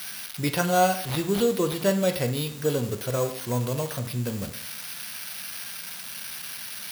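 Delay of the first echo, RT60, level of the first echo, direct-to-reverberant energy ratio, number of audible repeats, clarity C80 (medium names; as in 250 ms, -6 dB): no echo, 0.60 s, no echo, 6.5 dB, no echo, 14.0 dB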